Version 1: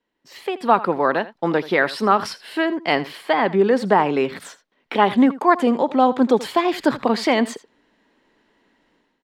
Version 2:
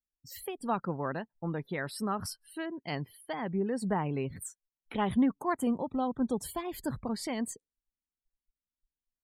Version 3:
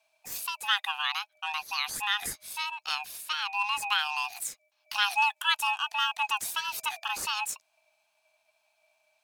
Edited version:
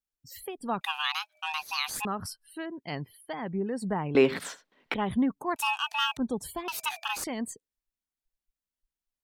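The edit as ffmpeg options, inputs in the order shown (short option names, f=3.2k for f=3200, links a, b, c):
-filter_complex "[2:a]asplit=3[a][b][c];[1:a]asplit=5[d][e][f][g][h];[d]atrim=end=0.812[i];[a]atrim=start=0.808:end=2.052[j];[e]atrim=start=2.048:end=4.152[k];[0:a]atrim=start=4.148:end=4.942[l];[f]atrim=start=4.938:end=5.562[m];[b]atrim=start=5.558:end=6.172[n];[g]atrim=start=6.168:end=6.682[o];[c]atrim=start=6.678:end=7.242[p];[h]atrim=start=7.238[q];[i][j]acrossfade=d=0.004:c1=hsin:c2=hsin[r];[r][k]acrossfade=d=0.004:c1=hsin:c2=hsin[s];[s][l]acrossfade=d=0.004:c1=hsin:c2=hsin[t];[t][m]acrossfade=d=0.004:c1=hsin:c2=hsin[u];[u][n]acrossfade=d=0.004:c1=hsin:c2=hsin[v];[v][o]acrossfade=d=0.004:c1=hsin:c2=hsin[w];[w][p]acrossfade=d=0.004:c1=hsin:c2=hsin[x];[x][q]acrossfade=d=0.004:c1=hsin:c2=hsin"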